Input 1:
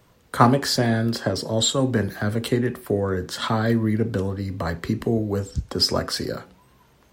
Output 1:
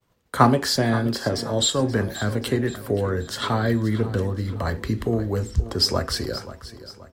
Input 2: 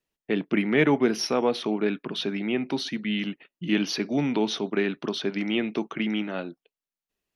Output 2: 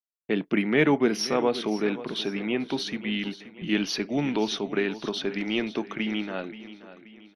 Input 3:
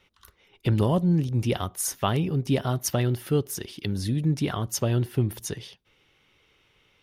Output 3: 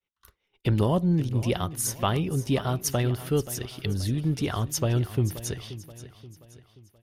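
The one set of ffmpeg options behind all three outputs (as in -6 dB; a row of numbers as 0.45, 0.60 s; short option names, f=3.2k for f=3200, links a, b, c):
-filter_complex "[0:a]agate=range=-33dB:threshold=-49dB:ratio=3:detection=peak,asubboost=boost=4.5:cutoff=71,asplit=2[a][b];[b]aecho=0:1:529|1058|1587|2116:0.178|0.08|0.036|0.0162[c];[a][c]amix=inputs=2:normalize=0"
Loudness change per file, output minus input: -0.5, -0.5, -0.5 LU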